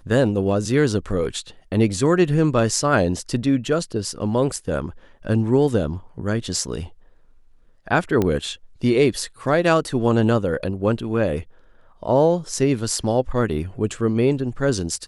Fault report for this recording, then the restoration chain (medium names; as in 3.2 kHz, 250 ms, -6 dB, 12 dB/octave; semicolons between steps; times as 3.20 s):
8.22 s: pop -9 dBFS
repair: de-click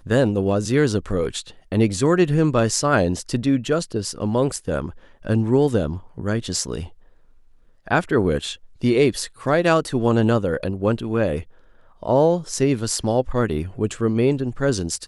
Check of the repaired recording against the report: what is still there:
nothing left